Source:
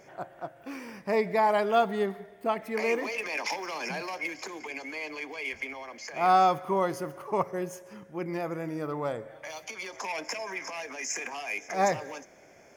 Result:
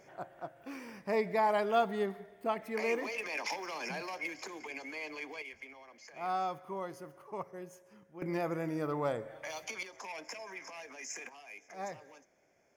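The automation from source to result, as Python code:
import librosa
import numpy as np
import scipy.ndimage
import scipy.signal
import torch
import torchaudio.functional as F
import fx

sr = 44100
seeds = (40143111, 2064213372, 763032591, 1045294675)

y = fx.gain(x, sr, db=fx.steps((0.0, -5.0), (5.42, -13.0), (8.22, -1.5), (9.83, -9.5), (11.29, -16.0)))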